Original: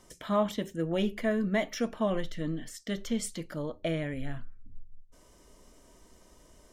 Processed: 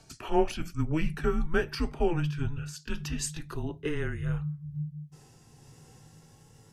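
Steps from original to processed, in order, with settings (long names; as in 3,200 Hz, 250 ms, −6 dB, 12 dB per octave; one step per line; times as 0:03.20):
pitch glide at a constant tempo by −3 semitones ending unshifted
frequency shifter −160 Hz
level +3.5 dB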